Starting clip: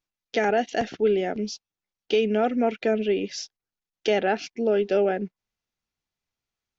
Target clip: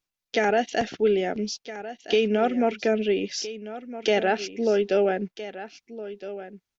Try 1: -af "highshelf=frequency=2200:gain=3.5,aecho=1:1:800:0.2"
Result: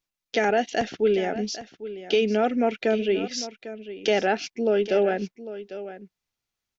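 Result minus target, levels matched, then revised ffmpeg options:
echo 514 ms early
-af "highshelf=frequency=2200:gain=3.5,aecho=1:1:1314:0.2"

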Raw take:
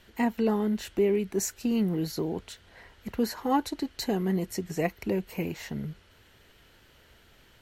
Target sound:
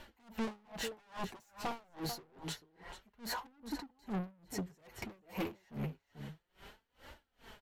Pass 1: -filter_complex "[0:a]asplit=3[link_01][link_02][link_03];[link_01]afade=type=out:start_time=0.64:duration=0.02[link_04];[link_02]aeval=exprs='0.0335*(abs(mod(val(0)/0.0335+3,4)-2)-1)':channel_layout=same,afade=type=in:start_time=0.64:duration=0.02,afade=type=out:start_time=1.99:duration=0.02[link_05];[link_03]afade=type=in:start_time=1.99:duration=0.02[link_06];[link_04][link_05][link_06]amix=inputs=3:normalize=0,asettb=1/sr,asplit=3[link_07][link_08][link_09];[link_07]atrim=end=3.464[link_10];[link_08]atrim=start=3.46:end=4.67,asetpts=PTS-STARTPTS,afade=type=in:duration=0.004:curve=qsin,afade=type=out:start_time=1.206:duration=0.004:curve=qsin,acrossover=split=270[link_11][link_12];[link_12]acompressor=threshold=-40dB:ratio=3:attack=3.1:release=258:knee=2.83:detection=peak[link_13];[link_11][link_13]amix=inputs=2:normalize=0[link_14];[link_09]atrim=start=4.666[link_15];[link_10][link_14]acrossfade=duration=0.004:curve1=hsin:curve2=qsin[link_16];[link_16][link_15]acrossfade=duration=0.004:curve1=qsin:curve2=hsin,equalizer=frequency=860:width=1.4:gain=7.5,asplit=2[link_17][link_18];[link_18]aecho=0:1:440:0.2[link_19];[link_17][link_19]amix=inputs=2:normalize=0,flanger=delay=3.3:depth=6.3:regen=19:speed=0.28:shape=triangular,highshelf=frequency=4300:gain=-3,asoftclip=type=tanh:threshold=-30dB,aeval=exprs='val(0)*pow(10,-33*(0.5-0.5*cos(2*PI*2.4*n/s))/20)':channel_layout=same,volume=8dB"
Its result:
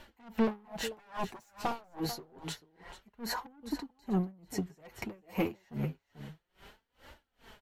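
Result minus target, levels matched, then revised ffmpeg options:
soft clipping: distortion −5 dB
-filter_complex "[0:a]asplit=3[link_01][link_02][link_03];[link_01]afade=type=out:start_time=0.64:duration=0.02[link_04];[link_02]aeval=exprs='0.0335*(abs(mod(val(0)/0.0335+3,4)-2)-1)':channel_layout=same,afade=type=in:start_time=0.64:duration=0.02,afade=type=out:start_time=1.99:duration=0.02[link_05];[link_03]afade=type=in:start_time=1.99:duration=0.02[link_06];[link_04][link_05][link_06]amix=inputs=3:normalize=0,asettb=1/sr,asplit=3[link_07][link_08][link_09];[link_07]atrim=end=3.464[link_10];[link_08]atrim=start=3.46:end=4.67,asetpts=PTS-STARTPTS,afade=type=in:duration=0.004:curve=qsin,afade=type=out:start_time=1.206:duration=0.004:curve=qsin,acrossover=split=270[link_11][link_12];[link_12]acompressor=threshold=-40dB:ratio=3:attack=3.1:release=258:knee=2.83:detection=peak[link_13];[link_11][link_13]amix=inputs=2:normalize=0[link_14];[link_09]atrim=start=4.666[link_15];[link_10][link_14]acrossfade=duration=0.004:curve1=hsin:curve2=qsin[link_16];[link_16][link_15]acrossfade=duration=0.004:curve1=qsin:curve2=hsin,equalizer=frequency=860:width=1.4:gain=7.5,asplit=2[link_17][link_18];[link_18]aecho=0:1:440:0.2[link_19];[link_17][link_19]amix=inputs=2:normalize=0,flanger=delay=3.3:depth=6.3:regen=19:speed=0.28:shape=triangular,highshelf=frequency=4300:gain=-3,asoftclip=type=tanh:threshold=-40.5dB,aeval=exprs='val(0)*pow(10,-33*(0.5-0.5*cos(2*PI*2.4*n/s))/20)':channel_layout=same,volume=8dB"

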